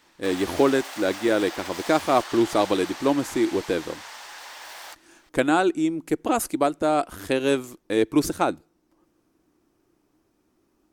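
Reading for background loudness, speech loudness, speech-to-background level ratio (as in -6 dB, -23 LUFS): -36.5 LUFS, -24.0 LUFS, 12.5 dB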